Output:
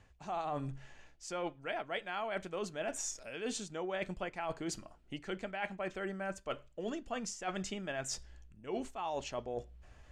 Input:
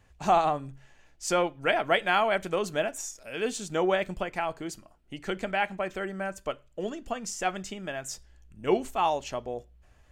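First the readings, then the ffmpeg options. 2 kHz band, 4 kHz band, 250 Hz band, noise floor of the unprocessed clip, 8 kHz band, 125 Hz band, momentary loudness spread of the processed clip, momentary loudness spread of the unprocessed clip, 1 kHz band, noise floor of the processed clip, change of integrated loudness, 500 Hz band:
−11.0 dB, −9.0 dB, −7.5 dB, −60 dBFS, −5.0 dB, −6.0 dB, 7 LU, 14 LU, −12.5 dB, −61 dBFS, −10.5 dB, −10.5 dB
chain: -af "lowpass=8000,areverse,acompressor=threshold=-37dB:ratio=12,areverse,volume=2dB"

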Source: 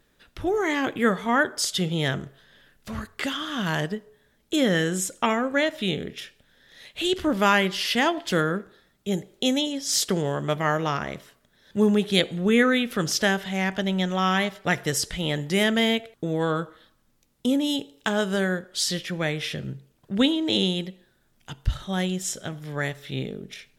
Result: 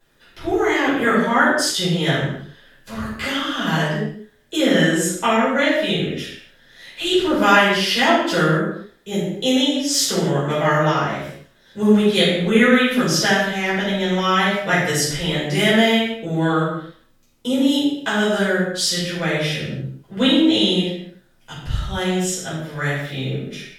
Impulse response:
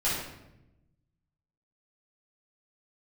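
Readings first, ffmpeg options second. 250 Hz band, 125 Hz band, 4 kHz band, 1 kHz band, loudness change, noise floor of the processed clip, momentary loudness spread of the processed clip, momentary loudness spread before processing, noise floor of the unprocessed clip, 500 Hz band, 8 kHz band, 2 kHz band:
+6.0 dB, +6.0 dB, +6.5 dB, +7.0 dB, +6.0 dB, −55 dBFS, 13 LU, 12 LU, −66 dBFS, +6.5 dB, +5.0 dB, +7.0 dB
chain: -filter_complex "[0:a]lowshelf=frequency=120:gain=-9[link_01];[1:a]atrim=start_sample=2205,afade=type=out:start_time=0.35:duration=0.01,atrim=end_sample=15876[link_02];[link_01][link_02]afir=irnorm=-1:irlink=0,volume=-3dB"

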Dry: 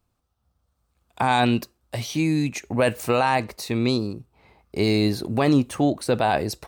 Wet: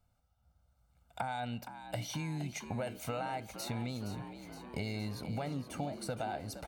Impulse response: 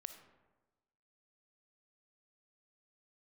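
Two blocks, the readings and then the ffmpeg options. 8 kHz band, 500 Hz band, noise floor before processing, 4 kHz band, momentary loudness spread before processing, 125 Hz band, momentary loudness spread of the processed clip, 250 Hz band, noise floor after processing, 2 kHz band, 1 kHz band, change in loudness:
−10.5 dB, −17.5 dB, −73 dBFS, −15.5 dB, 9 LU, −13.0 dB, 5 LU, −18.0 dB, −74 dBFS, −16.5 dB, −16.0 dB, −17.0 dB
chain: -filter_complex "[0:a]aecho=1:1:1.4:0.76,acompressor=threshold=-31dB:ratio=10,asplit=9[link_01][link_02][link_03][link_04][link_05][link_06][link_07][link_08][link_09];[link_02]adelay=467,afreqshift=65,volume=-11dB[link_10];[link_03]adelay=934,afreqshift=130,volume=-14.9dB[link_11];[link_04]adelay=1401,afreqshift=195,volume=-18.8dB[link_12];[link_05]adelay=1868,afreqshift=260,volume=-22.6dB[link_13];[link_06]adelay=2335,afreqshift=325,volume=-26.5dB[link_14];[link_07]adelay=2802,afreqshift=390,volume=-30.4dB[link_15];[link_08]adelay=3269,afreqshift=455,volume=-34.3dB[link_16];[link_09]adelay=3736,afreqshift=520,volume=-38.1dB[link_17];[link_01][link_10][link_11][link_12][link_13][link_14][link_15][link_16][link_17]amix=inputs=9:normalize=0,asplit=2[link_18][link_19];[1:a]atrim=start_sample=2205,lowpass=3600[link_20];[link_19][link_20]afir=irnorm=-1:irlink=0,volume=-7dB[link_21];[link_18][link_21]amix=inputs=2:normalize=0,volume=-6dB"

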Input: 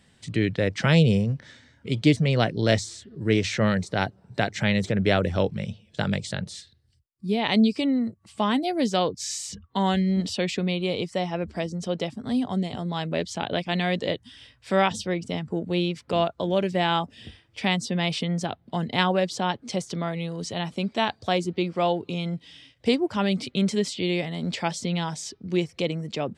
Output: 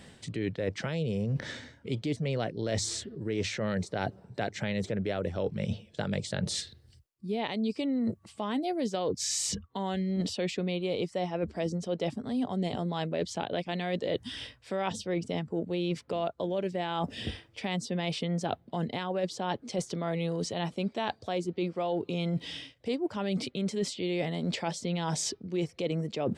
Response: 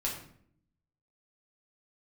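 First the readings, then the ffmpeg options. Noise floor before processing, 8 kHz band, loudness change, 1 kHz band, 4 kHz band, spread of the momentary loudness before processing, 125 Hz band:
−62 dBFS, −0.5 dB, −7.0 dB, −7.5 dB, −7.5 dB, 9 LU, −7.5 dB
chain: -af "equalizer=frequency=470:width=0.89:gain=5.5,alimiter=limit=-13.5dB:level=0:latency=1:release=240,areverse,acompressor=threshold=-36dB:ratio=8,areverse,volume=7.5dB"

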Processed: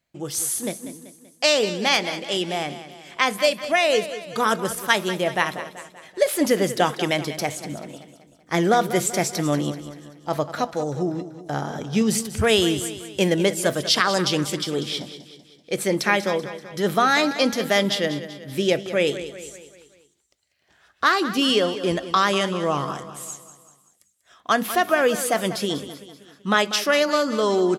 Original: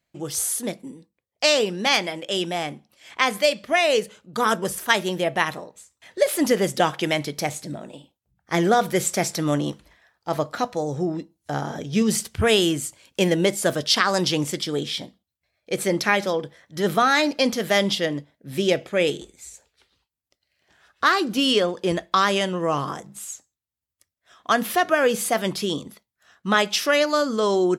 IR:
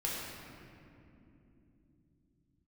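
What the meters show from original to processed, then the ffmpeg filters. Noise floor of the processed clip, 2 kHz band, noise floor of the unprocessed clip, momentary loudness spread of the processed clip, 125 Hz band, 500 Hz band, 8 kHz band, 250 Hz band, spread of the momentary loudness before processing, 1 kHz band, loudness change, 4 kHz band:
−60 dBFS, +0.5 dB, −84 dBFS, 15 LU, +0.5 dB, +0.5 dB, +0.5 dB, +0.5 dB, 14 LU, +0.5 dB, 0.0 dB, +0.5 dB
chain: -af "aecho=1:1:192|384|576|768|960:0.224|0.112|0.056|0.028|0.014"

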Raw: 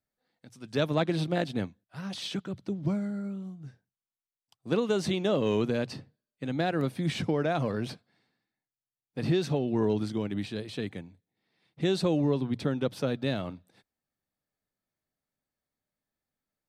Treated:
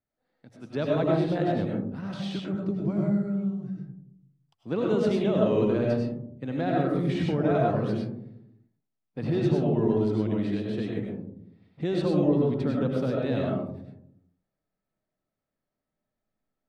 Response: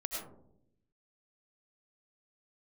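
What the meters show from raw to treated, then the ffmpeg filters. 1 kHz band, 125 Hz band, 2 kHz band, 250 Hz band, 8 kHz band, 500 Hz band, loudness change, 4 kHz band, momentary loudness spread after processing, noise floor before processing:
+3.0 dB, +4.0 dB, −1.5 dB, +4.5 dB, can't be measured, +4.0 dB, +3.5 dB, −5.0 dB, 13 LU, below −85 dBFS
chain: -filter_complex "[0:a]lowpass=frequency=1600:poles=1,asplit=2[link_01][link_02];[link_02]alimiter=limit=-24dB:level=0:latency=1,volume=-1dB[link_03];[link_01][link_03]amix=inputs=2:normalize=0[link_04];[1:a]atrim=start_sample=2205[link_05];[link_04][link_05]afir=irnorm=-1:irlink=0,volume=-2.5dB"

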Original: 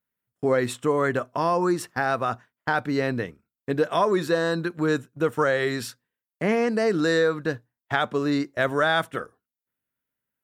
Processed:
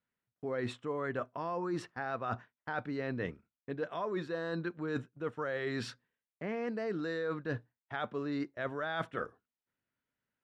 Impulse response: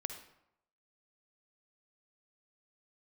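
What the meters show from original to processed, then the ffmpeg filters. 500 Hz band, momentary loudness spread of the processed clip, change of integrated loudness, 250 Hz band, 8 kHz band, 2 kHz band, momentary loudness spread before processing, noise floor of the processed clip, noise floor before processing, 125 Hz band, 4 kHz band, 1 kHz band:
−13.5 dB, 6 LU, −13.0 dB, −12.0 dB, −19.0 dB, −13.5 dB, 10 LU, below −85 dBFS, below −85 dBFS, −11.0 dB, −15.0 dB, −13.5 dB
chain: -af "areverse,acompressor=threshold=-33dB:ratio=10,areverse,lowpass=3700"

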